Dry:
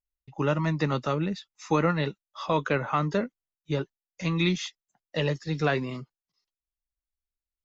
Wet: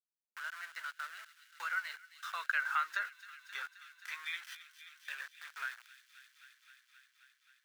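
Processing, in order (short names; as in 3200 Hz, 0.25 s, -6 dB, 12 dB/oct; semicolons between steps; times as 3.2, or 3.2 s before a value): Doppler pass-by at 3.02, 23 m/s, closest 11 m; sample gate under -41.5 dBFS; ladder high-pass 1400 Hz, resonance 70%; thin delay 0.264 s, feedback 72%, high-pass 2800 Hz, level -13.5 dB; three-band squash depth 40%; gain +7 dB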